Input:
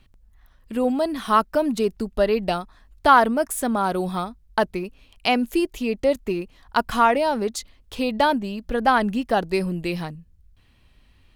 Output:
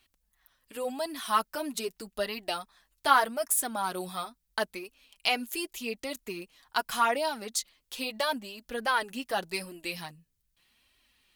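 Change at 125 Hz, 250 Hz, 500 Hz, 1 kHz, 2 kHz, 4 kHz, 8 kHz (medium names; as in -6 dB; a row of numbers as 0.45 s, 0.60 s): -17.5 dB, -15.5 dB, -11.5 dB, -8.5 dB, -5.5 dB, -2.0 dB, +2.0 dB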